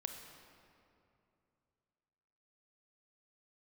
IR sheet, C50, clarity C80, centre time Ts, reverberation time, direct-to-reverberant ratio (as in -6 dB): 5.0 dB, 6.5 dB, 53 ms, 2.7 s, 4.5 dB